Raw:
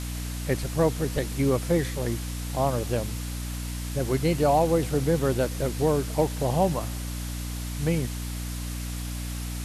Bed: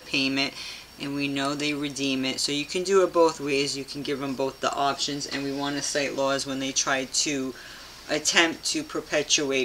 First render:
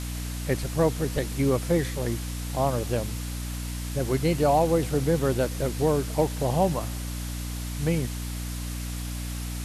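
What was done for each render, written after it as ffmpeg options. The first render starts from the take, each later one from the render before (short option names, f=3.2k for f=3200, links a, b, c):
-af anull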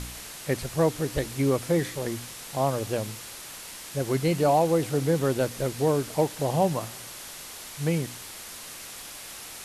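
-af "bandreject=f=60:t=h:w=4,bandreject=f=120:t=h:w=4,bandreject=f=180:t=h:w=4,bandreject=f=240:t=h:w=4,bandreject=f=300:t=h:w=4"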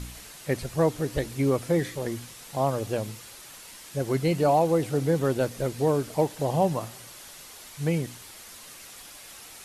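-af "afftdn=nr=6:nf=-42"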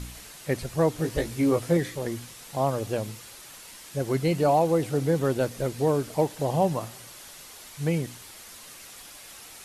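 -filter_complex "[0:a]asettb=1/sr,asplit=3[a][b][c];[a]atrim=end=0.974[d];[b]atrim=start=0.97:end=1.77,asetpts=PTS-STARTPTS,afade=t=in:d=0.004:c=qsin,afade=t=out:st=0.796:d=0.004:c=qsin,asplit=2[e][f];[f]adelay=18,volume=-4.5dB[g];[e][g]amix=inputs=2:normalize=0,atrim=end_sample=35280[h];[c]atrim=start=1.766[i];[d][h]acrossfade=d=0.004:c1=hsin:c2=qsin[j];[j][i]acrossfade=d=0.004:c1=qsin:c2=hsin"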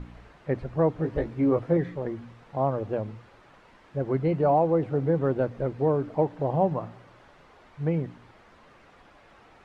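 -af "lowpass=1.4k,bandreject=f=58.47:t=h:w=4,bandreject=f=116.94:t=h:w=4,bandreject=f=175.41:t=h:w=4,bandreject=f=233.88:t=h:w=4,bandreject=f=292.35:t=h:w=4"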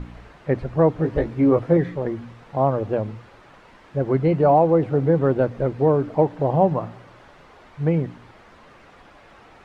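-af "volume=6dB"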